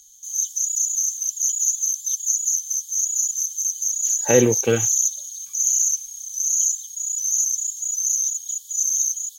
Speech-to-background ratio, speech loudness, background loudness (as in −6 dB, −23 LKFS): 0.5 dB, −20.0 LKFS, −20.5 LKFS